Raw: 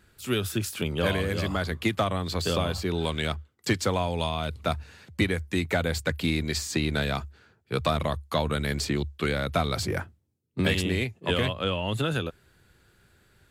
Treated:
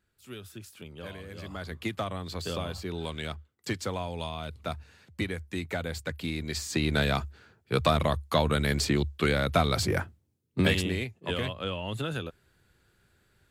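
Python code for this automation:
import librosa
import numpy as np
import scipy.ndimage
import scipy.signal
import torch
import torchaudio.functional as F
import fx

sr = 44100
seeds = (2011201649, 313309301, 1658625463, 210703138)

y = fx.gain(x, sr, db=fx.line((1.25, -16.0), (1.77, -7.0), (6.34, -7.0), (7.0, 1.5), (10.6, 1.5), (11.06, -5.5)))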